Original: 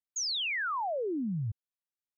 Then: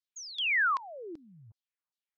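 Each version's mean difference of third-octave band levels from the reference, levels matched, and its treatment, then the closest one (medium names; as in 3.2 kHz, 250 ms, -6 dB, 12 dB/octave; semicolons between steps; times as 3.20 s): 3.5 dB: LFO band-pass saw down 2.6 Hz 820–4900 Hz; trim +7 dB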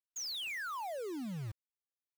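21.5 dB: companded quantiser 4-bit; trim -7 dB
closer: first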